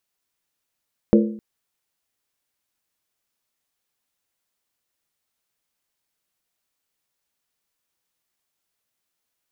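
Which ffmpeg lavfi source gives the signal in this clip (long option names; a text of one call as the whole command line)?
ffmpeg -f lavfi -i "aevalsrc='0.316*pow(10,-3*t/0.58)*sin(2*PI*215*t)+0.224*pow(10,-3*t/0.459)*sin(2*PI*342.7*t)+0.158*pow(10,-3*t/0.397)*sin(2*PI*459.2*t)+0.112*pow(10,-3*t/0.383)*sin(2*PI*493.6*t)+0.0794*pow(10,-3*t/0.356)*sin(2*PI*570.4*t)':duration=0.26:sample_rate=44100" out.wav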